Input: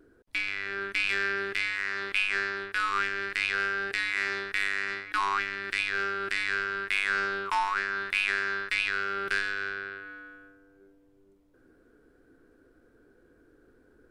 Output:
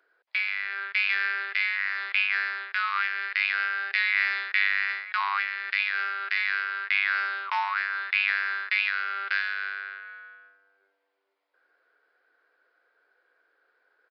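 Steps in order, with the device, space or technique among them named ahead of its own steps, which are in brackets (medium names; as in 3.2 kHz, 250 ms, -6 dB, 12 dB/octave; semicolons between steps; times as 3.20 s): musical greeting card (resampled via 11.025 kHz; high-pass 680 Hz 24 dB/octave; peaking EQ 2.1 kHz +5 dB 0.48 oct); 3.90–4.92 s: dynamic bell 3.1 kHz, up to +3 dB, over -35 dBFS, Q 0.86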